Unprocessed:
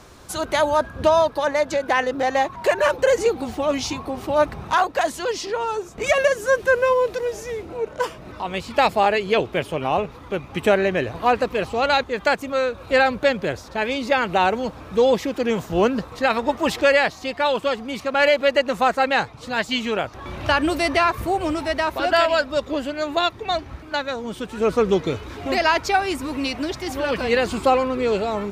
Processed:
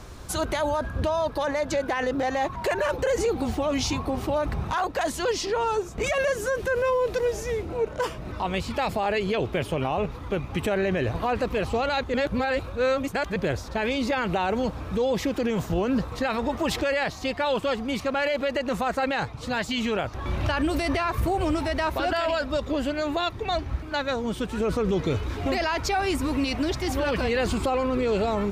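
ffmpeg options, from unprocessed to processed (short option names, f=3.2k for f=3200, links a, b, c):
-filter_complex "[0:a]asplit=3[a][b][c];[a]atrim=end=12.142[d];[b]atrim=start=12.138:end=13.362,asetpts=PTS-STARTPTS,areverse[e];[c]atrim=start=13.358[f];[d][e]acrossfade=d=0.004:c1=hsin:c2=hsin[g];[g][f]acrossfade=d=0.004:c1=hsin:c2=hsin,lowshelf=f=110:g=11.5,alimiter=limit=-17dB:level=0:latency=1:release=28"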